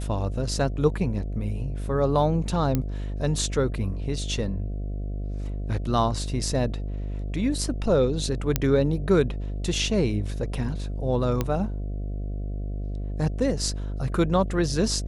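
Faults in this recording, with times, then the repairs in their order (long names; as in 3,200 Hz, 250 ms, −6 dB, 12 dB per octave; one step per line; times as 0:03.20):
mains buzz 50 Hz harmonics 14 −30 dBFS
0:02.75: click −11 dBFS
0:08.56: click −6 dBFS
0:11.41: click −11 dBFS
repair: click removal
hum removal 50 Hz, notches 14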